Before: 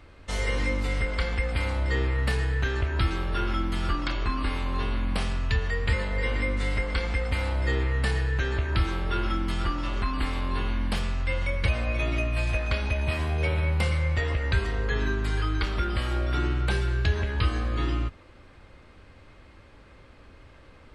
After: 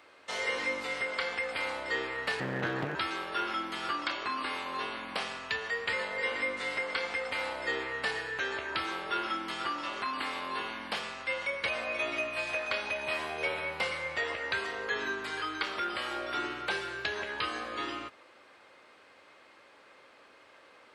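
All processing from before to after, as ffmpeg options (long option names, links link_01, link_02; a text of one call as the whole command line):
ffmpeg -i in.wav -filter_complex "[0:a]asettb=1/sr,asplit=3[link_01][link_02][link_03];[link_01]atrim=end=2.404[link_04];[link_02]atrim=start=2.4:end=2.95,asetpts=PTS-STARTPTS,afade=type=in:duration=0.004:curve=qsin,afade=type=out:start_time=0.546:duration=0.004:curve=qsin,aemphasis=mode=reproduction:type=riaa,aeval=exprs='abs(val(0))':channel_layout=same[link_05];[link_03]atrim=start=2.946[link_06];[link_04][link_05]acrossfade=duration=0.004:curve1=hsin:curve2=qsin[link_07];[link_07][link_06]acrossfade=duration=0.004:curve1=qsin:curve2=hsin,highpass=500,acrossover=split=6100[link_08][link_09];[link_09]acompressor=threshold=-55dB:ratio=4:attack=1:release=60[link_10];[link_08][link_10]amix=inputs=2:normalize=0" out.wav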